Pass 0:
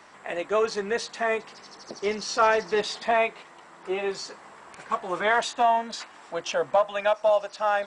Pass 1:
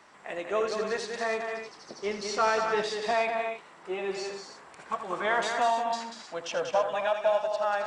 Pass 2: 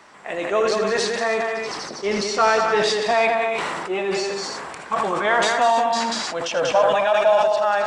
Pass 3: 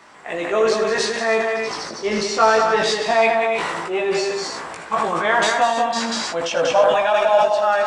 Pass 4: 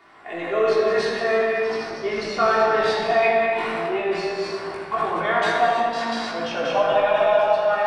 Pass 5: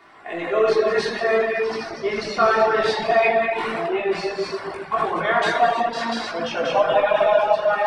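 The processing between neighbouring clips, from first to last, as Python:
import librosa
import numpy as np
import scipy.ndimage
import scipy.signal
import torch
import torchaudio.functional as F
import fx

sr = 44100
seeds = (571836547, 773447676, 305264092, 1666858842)

y1 = fx.echo_multitap(x, sr, ms=(81, 189, 267, 307), db=(-10.0, -6.0, -10.0, -12.5))
y1 = F.gain(torch.from_numpy(y1), -5.0).numpy()
y2 = fx.sustainer(y1, sr, db_per_s=22.0)
y2 = F.gain(torch.from_numpy(y2), 7.5).numpy()
y3 = fx.doubler(y2, sr, ms=18.0, db=-3.5)
y4 = fx.peak_eq(y3, sr, hz=7100.0, db=-14.5, octaves=0.73)
y4 = fx.room_shoebox(y4, sr, seeds[0], volume_m3=3600.0, walls='mixed', distance_m=3.3)
y4 = F.gain(torch.from_numpy(y4), -7.0).numpy()
y5 = fx.dereverb_blind(y4, sr, rt60_s=0.7)
y5 = F.gain(torch.from_numpy(y5), 2.5).numpy()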